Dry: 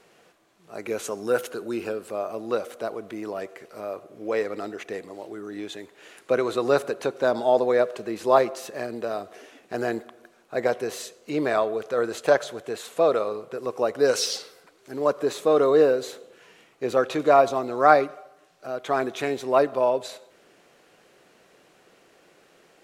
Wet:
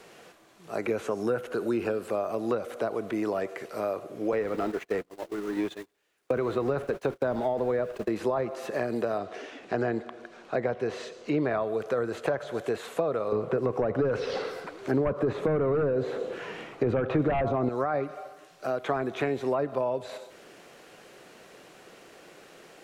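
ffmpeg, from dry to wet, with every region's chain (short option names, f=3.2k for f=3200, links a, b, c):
-filter_complex "[0:a]asettb=1/sr,asplit=3[a][b][c];[a]atrim=end=4.324[d];[b]atrim=start=4.32:end=8.09,asetpts=PTS-STARTPTS,afade=t=in:d=0.004:c=qsin,afade=t=out:st=3.766:d=0.004:c=qsin,aeval=exprs='val(0)+0.5*0.0168*sgn(val(0))':c=same,agate=range=-42dB:threshold=-33dB:ratio=16:release=100:detection=peak[e];[c]atrim=start=8.086[f];[d][e]acrossfade=d=0.004:c1=hsin:c2=qsin[g];[g][f]acrossfade=d=0.004:c1=qsin:c2=hsin,asettb=1/sr,asplit=3[h][i][j];[h]atrim=end=9.184[k];[i]atrim=start=9.18:end=11.6,asetpts=PTS-STARTPTS,afade=t=in:d=0.004:c=qsin,afade=t=out:st=2.416:d=0.004:c=qsin,lowpass=5.1k,acompressor=mode=upward:threshold=-47dB:ratio=2.5:attack=3.2:release=140:knee=2.83:detection=peak[l];[j]atrim=start=11.596[m];[k][l]acrossfade=d=0.004:c1=hsin:c2=qsin[n];[n][m]acrossfade=d=0.004:c1=qsin:c2=hsin,asettb=1/sr,asplit=3[o][p][q];[o]atrim=end=13.324[r];[p]atrim=start=13.32:end=17.69,asetpts=PTS-STARTPTS,afade=t=in:d=0.004:c=qsin,afade=t=out:st=4.366:d=0.004:c=qsin,lowpass=f=1.7k:p=1,aeval=exprs='0.447*sin(PI/2*2.24*val(0)/0.447)':c=same[s];[q]atrim=start=17.686[t];[r][s]acrossfade=d=0.004:c1=hsin:c2=qsin[u];[u][t]acrossfade=d=0.004:c1=qsin:c2=hsin,acrossover=split=2600[v][w];[w]acompressor=threshold=-53dB:ratio=4:attack=1:release=60[x];[v][x]amix=inputs=2:normalize=0,alimiter=limit=-13dB:level=0:latency=1:release=18,acrossover=split=170[y][z];[z]acompressor=threshold=-31dB:ratio=10[aa];[y][aa]amix=inputs=2:normalize=0,volume=6dB"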